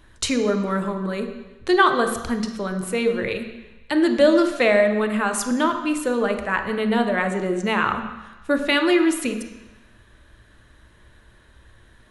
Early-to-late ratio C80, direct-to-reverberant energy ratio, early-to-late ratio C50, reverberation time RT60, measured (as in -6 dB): 10.0 dB, 6.0 dB, 8.0 dB, 1.0 s